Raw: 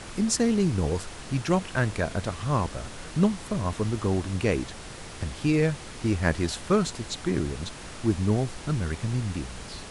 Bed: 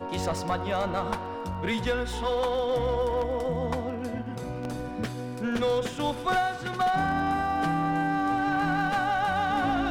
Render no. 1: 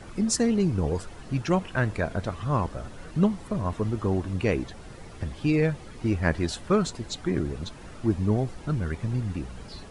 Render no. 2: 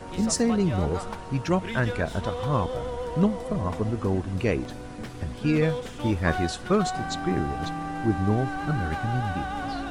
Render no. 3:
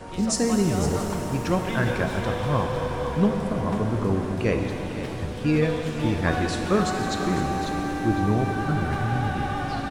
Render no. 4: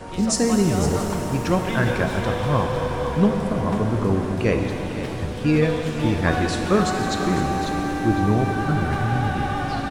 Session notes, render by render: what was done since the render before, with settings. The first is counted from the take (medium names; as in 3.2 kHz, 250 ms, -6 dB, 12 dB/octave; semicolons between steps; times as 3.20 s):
noise reduction 11 dB, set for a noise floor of -41 dBFS
add bed -6 dB
delay 504 ms -11 dB; pitch-shifted reverb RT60 3.8 s, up +7 st, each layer -8 dB, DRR 3.5 dB
trim +3 dB